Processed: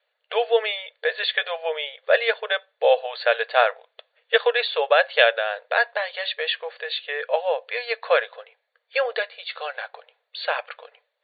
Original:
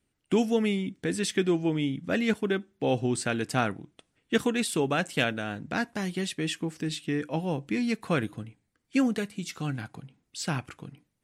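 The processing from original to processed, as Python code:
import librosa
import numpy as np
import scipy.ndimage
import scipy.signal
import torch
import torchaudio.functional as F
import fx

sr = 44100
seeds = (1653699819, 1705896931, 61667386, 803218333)

y = fx.brickwall_bandpass(x, sr, low_hz=440.0, high_hz=4600.0)
y = fx.small_body(y, sr, hz=(590.0, 1700.0, 3500.0), ring_ms=25, db=8)
y = y * 10.0 ** (8.0 / 20.0)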